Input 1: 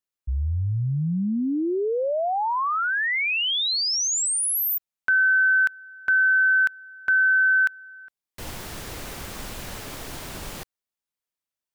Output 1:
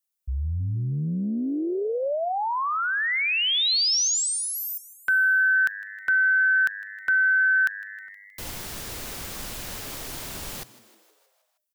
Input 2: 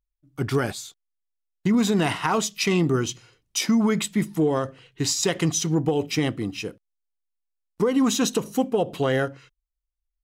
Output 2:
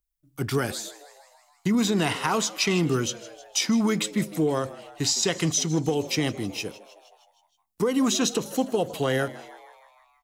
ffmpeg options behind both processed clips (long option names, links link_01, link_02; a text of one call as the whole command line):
ffmpeg -i in.wav -filter_complex "[0:a]acrossover=split=300|1400|6500[link_01][link_02][link_03][link_04];[link_04]acompressor=threshold=-43dB:ratio=6:attack=0.66:release=340:detection=peak[link_05];[link_01][link_02][link_03][link_05]amix=inputs=4:normalize=0,crystalizer=i=2:c=0,asplit=7[link_06][link_07][link_08][link_09][link_10][link_11][link_12];[link_07]adelay=157,afreqshift=100,volume=-18.5dB[link_13];[link_08]adelay=314,afreqshift=200,volume=-22.7dB[link_14];[link_09]adelay=471,afreqshift=300,volume=-26.8dB[link_15];[link_10]adelay=628,afreqshift=400,volume=-31dB[link_16];[link_11]adelay=785,afreqshift=500,volume=-35.1dB[link_17];[link_12]adelay=942,afreqshift=600,volume=-39.3dB[link_18];[link_06][link_13][link_14][link_15][link_16][link_17][link_18]amix=inputs=7:normalize=0,volume=-2.5dB" out.wav